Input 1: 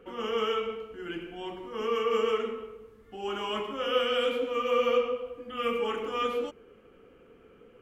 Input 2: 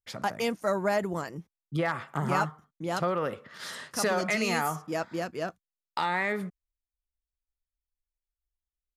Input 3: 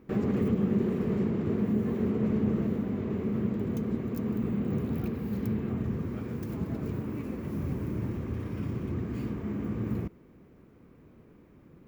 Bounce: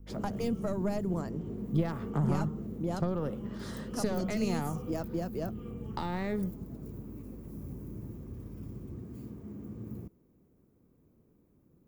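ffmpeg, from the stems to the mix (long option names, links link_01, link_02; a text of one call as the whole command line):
ffmpeg -i stem1.wav -i stem2.wav -i stem3.wav -filter_complex "[0:a]volume=-19.5dB[link_01];[1:a]aeval=exprs='0.237*(cos(1*acos(clip(val(0)/0.237,-1,1)))-cos(1*PI/2))+0.075*(cos(2*acos(clip(val(0)/0.237,-1,1)))-cos(2*PI/2))':channel_layout=same,aeval=exprs='val(0)+0.00282*(sin(2*PI*50*n/s)+sin(2*PI*2*50*n/s)/2+sin(2*PI*3*50*n/s)/3+sin(2*PI*4*50*n/s)/4+sin(2*PI*5*50*n/s)/5)':channel_layout=same,lowpass=frequency=2700:poles=1,volume=3dB[link_02];[2:a]highshelf=frequency=4900:gain=9.5,acontrast=86,volume=-17dB[link_03];[link_01][link_02][link_03]amix=inputs=3:normalize=0,equalizer=frequency=2200:width=0.57:gain=-12.5,acrossover=split=290|3000[link_04][link_05][link_06];[link_05]acompressor=threshold=-35dB:ratio=6[link_07];[link_04][link_07][link_06]amix=inputs=3:normalize=0" out.wav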